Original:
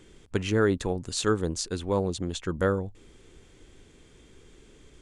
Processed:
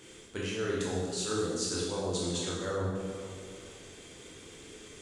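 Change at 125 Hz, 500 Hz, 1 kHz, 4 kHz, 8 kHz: −6.5, −5.5, −6.0, −0.5, +0.5 decibels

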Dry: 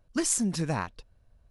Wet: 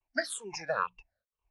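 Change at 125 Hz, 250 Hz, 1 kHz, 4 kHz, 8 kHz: −22.0, −18.0, +1.5, −3.0, −13.0 decibels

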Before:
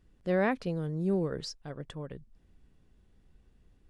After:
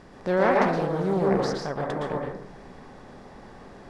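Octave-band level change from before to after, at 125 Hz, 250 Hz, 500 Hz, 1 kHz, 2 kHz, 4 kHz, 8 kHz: +4.0, +5.5, +9.0, +13.5, +8.0, +4.5, +5.0 decibels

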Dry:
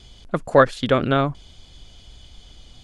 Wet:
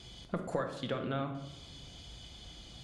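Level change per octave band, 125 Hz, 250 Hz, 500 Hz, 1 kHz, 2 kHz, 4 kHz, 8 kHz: −14.0 dB, −14.5 dB, −18.5 dB, −18.5 dB, −19.5 dB, −11.0 dB, can't be measured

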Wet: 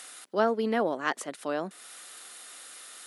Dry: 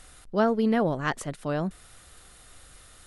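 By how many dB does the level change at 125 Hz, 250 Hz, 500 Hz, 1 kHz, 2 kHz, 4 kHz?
−14.0, −6.5, −1.5, −0.5, 0.0, +1.0 decibels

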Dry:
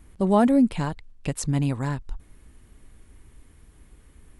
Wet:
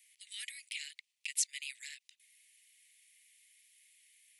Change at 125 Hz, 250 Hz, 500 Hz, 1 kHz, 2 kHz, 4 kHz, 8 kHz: below −40 dB, below −40 dB, below −40 dB, below −40 dB, −5.5 dB, +1.0 dB, +1.0 dB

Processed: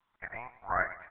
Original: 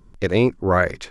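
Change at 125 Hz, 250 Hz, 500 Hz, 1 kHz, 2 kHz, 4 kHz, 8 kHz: −27.0 dB, −31.0 dB, −21.5 dB, −9.0 dB, −9.5 dB, below −35 dB, can't be measured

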